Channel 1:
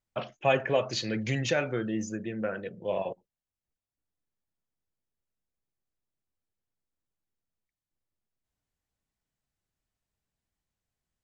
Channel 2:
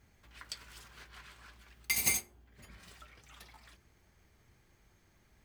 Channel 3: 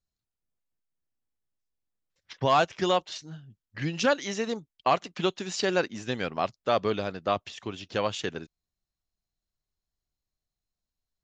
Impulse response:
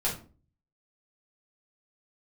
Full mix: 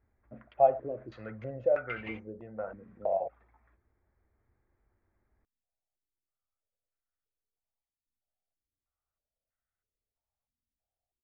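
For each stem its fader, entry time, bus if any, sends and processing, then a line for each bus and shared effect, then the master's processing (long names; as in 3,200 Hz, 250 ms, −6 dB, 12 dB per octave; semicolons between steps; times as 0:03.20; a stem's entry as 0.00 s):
−9.5 dB, 0.15 s, no send, comb filter 1.5 ms, depth 51%; low-pass on a step sequencer 3.1 Hz 260–1,600 Hz
−6.0 dB, 0.00 s, no send, adaptive Wiener filter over 15 samples; Chebyshev low-pass filter 3,000 Hz, order 5
muted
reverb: not used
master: parametric band 160 Hz −12.5 dB 0.5 octaves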